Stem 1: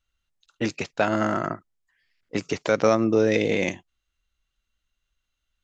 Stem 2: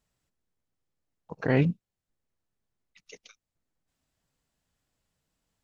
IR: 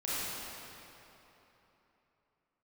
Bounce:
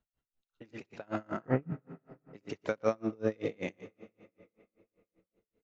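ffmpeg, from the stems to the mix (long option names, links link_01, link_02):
-filter_complex "[0:a]volume=-7.5dB,asplit=3[link_01][link_02][link_03];[link_02]volume=-19.5dB[link_04];[link_03]volume=-11dB[link_05];[1:a]lowpass=1600,bandreject=frequency=50:width_type=h:width=6,bandreject=frequency=100:width_type=h:width=6,bandreject=frequency=150:width_type=h:width=6,volume=-2dB,asplit=2[link_06][link_07];[link_07]volume=-21dB[link_08];[2:a]atrim=start_sample=2205[link_09];[link_04][link_08]amix=inputs=2:normalize=0[link_10];[link_10][link_09]afir=irnorm=-1:irlink=0[link_11];[link_05]aecho=0:1:119:1[link_12];[link_01][link_06][link_11][link_12]amix=inputs=4:normalize=0,highshelf=frequency=3700:gain=-10,aeval=exprs='val(0)*pow(10,-33*(0.5-0.5*cos(2*PI*5.2*n/s))/20)':channel_layout=same"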